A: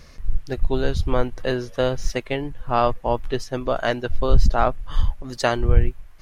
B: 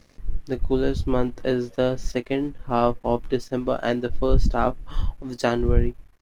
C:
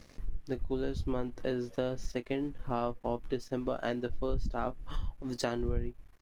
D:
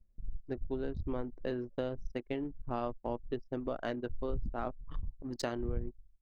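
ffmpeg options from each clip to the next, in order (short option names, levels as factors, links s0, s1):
-filter_complex "[0:a]equalizer=f=280:t=o:w=1.4:g=9.5,aeval=exprs='sgn(val(0))*max(abs(val(0))-0.00531,0)':c=same,asplit=2[s0][s1];[s1]adelay=25,volume=0.2[s2];[s0][s2]amix=inputs=2:normalize=0,volume=0.596"
-af "acompressor=threshold=0.0224:ratio=3"
-af "anlmdn=0.631,volume=0.708"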